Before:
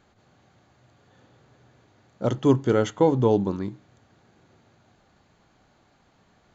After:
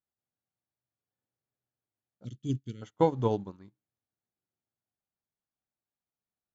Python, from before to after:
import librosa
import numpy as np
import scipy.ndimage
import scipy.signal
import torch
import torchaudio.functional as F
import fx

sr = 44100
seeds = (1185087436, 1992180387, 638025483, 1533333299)

y = fx.cheby1_bandstop(x, sr, low_hz=230.0, high_hz=3200.0, order=2, at=(2.23, 2.81), fade=0.02)
y = fx.dynamic_eq(y, sr, hz=360.0, q=0.84, threshold_db=-33.0, ratio=4.0, max_db=-5)
y = fx.upward_expand(y, sr, threshold_db=-44.0, expansion=2.5)